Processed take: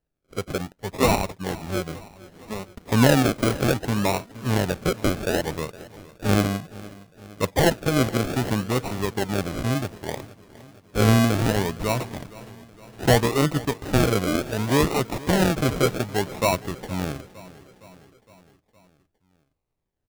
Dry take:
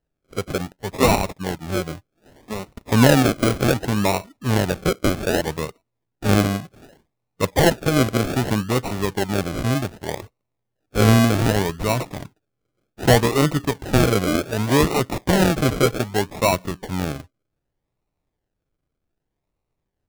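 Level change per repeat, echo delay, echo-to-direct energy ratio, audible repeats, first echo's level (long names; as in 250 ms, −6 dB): −4.5 dB, 463 ms, −17.5 dB, 4, −19.5 dB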